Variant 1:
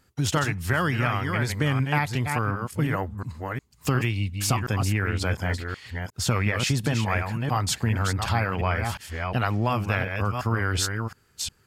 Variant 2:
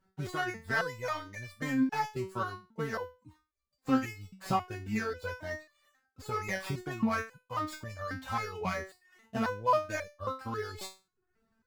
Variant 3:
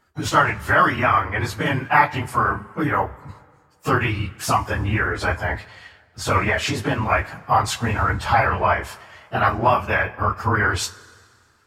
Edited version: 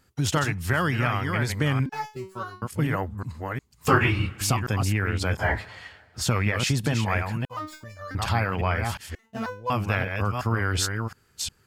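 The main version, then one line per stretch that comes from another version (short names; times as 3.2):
1
1.86–2.62 from 2
3.88–4.41 from 3
5.39–6.21 from 3
7.45–8.15 from 2
9.15–9.7 from 2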